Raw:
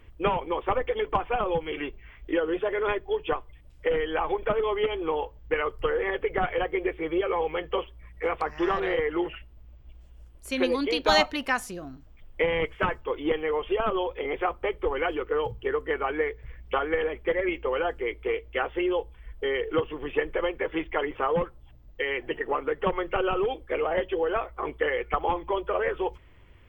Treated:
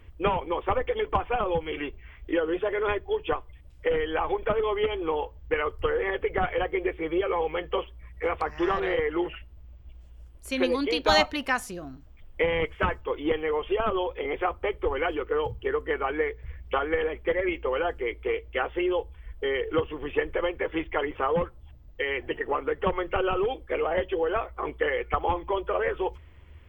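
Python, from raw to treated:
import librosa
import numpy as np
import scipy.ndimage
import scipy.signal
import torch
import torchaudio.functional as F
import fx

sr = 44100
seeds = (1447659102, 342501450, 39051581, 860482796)

y = fx.peak_eq(x, sr, hz=76.0, db=11.5, octaves=0.33)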